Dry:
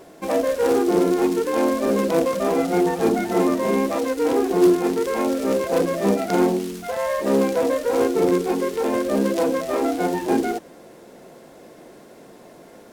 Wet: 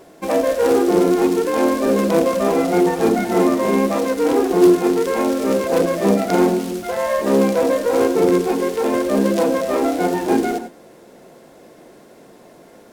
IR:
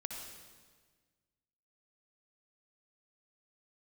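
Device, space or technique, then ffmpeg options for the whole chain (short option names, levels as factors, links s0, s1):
keyed gated reverb: -filter_complex "[0:a]asplit=3[s0][s1][s2];[1:a]atrim=start_sample=2205[s3];[s1][s3]afir=irnorm=-1:irlink=0[s4];[s2]apad=whole_len=569811[s5];[s4][s5]sidechaingate=range=0.0224:threshold=0.0158:ratio=16:detection=peak,volume=0.631[s6];[s0][s6]amix=inputs=2:normalize=0"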